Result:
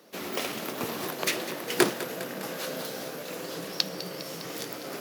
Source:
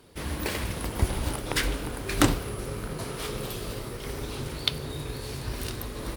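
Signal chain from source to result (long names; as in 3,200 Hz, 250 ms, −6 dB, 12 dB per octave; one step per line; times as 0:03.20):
high-pass filter 160 Hz 24 dB per octave
speed change +23%
on a send: feedback echo with a high-pass in the loop 203 ms, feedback 70%, level −13.5 dB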